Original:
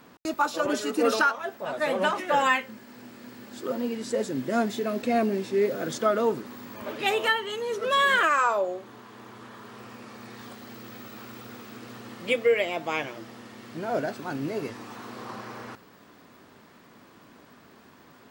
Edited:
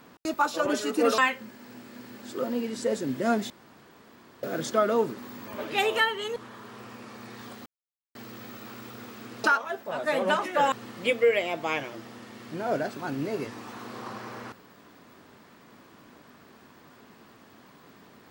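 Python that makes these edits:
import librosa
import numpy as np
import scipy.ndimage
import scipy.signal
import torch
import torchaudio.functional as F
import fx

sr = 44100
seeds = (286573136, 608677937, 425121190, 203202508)

y = fx.edit(x, sr, fx.move(start_s=1.18, length_s=1.28, to_s=11.95),
    fx.room_tone_fill(start_s=4.78, length_s=0.93),
    fx.cut(start_s=7.64, length_s=1.72),
    fx.insert_silence(at_s=10.66, length_s=0.49), tone=tone)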